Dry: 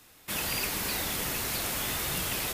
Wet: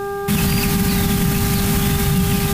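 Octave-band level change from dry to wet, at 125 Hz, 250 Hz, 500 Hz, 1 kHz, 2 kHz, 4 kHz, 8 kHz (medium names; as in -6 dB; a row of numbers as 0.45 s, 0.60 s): +23.5 dB, +23.0 dB, +16.0 dB, +12.0 dB, +8.0 dB, +7.5 dB, +7.5 dB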